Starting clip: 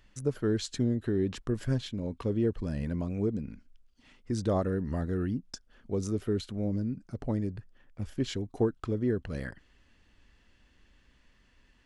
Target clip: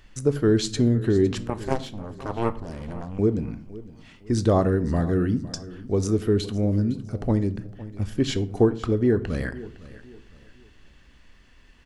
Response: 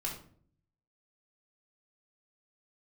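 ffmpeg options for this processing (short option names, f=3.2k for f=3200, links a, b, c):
-filter_complex "[0:a]asettb=1/sr,asplit=3[a][b][c];[a]atrim=end=1.424[d];[b]atrim=start=1.42:end=3.19,asetpts=PTS-STARTPTS,afade=t=in:d=0.004:c=qsin,afade=t=out:st=1.766:d=0.004:c=qsin,aeval=exprs='0.141*(cos(1*acos(clip(val(0)/0.141,-1,1)))-cos(1*PI/2))+0.0562*(cos(3*acos(clip(val(0)/0.141,-1,1)))-cos(3*PI/2))+0.00708*(cos(6*acos(clip(val(0)/0.141,-1,1)))-cos(6*PI/2))+0.00562*(cos(7*acos(clip(val(0)/0.141,-1,1)))-cos(7*PI/2))':c=same[e];[c]atrim=start=3.186[f];[d][e]acrossfade=d=0.004:c1=hsin:c2=qsin[g];[g][f]acrossfade=d=0.004:c1=qsin:c2=hsin,aecho=1:1:509|1018|1527:0.126|0.0428|0.0146,asplit=2[h][i];[1:a]atrim=start_sample=2205[j];[i][j]afir=irnorm=-1:irlink=0,volume=-10.5dB[k];[h][k]amix=inputs=2:normalize=0,volume=6.5dB"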